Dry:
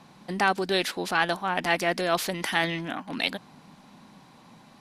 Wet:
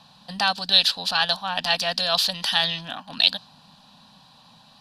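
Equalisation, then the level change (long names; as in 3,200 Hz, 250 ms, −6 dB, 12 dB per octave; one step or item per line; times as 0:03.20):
dynamic equaliser 4,600 Hz, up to +6 dB, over −42 dBFS, Q 1.1
flat-topped bell 2,900 Hz +13.5 dB
phaser with its sweep stopped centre 880 Hz, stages 4
0.0 dB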